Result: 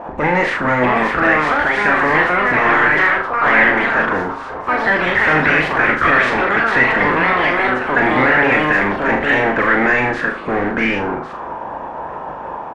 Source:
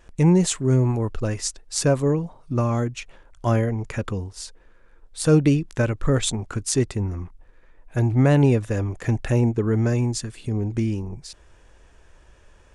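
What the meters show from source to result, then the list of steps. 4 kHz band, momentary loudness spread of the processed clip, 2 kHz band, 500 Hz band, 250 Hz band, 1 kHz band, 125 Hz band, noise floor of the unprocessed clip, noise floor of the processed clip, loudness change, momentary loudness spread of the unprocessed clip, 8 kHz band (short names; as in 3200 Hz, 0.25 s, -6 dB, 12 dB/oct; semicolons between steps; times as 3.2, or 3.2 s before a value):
+6.0 dB, 13 LU, +25.0 dB, +7.0 dB, +2.0 dB, +20.0 dB, -8.0 dB, -53 dBFS, -29 dBFS, +8.5 dB, 13 LU, under -15 dB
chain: spectral limiter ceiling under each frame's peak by 23 dB; HPF 62 Hz 12 dB/oct; bell 100 Hz -12 dB 0.87 oct; notch 390 Hz, Q 12; limiter -13.5 dBFS, peak gain reduction 11 dB; echoes that change speed 0.682 s, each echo +4 st, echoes 3; power-law curve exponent 0.5; doubler 32 ms -14 dB; flutter echo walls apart 6.8 m, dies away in 0.41 s; envelope low-pass 730–1900 Hz up, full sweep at -13.5 dBFS; gain -1.5 dB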